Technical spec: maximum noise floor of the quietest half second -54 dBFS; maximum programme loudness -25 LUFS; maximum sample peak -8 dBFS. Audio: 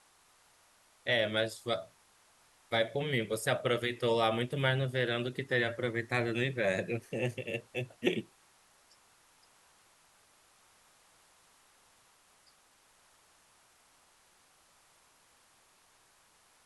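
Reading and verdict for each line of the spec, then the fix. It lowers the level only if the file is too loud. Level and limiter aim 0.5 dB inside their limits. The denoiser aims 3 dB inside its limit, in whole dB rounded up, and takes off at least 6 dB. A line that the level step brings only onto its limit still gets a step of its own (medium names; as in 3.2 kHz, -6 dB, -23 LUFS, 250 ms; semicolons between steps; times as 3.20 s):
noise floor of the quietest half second -66 dBFS: pass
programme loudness -32.5 LUFS: pass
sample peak -14.5 dBFS: pass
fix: none needed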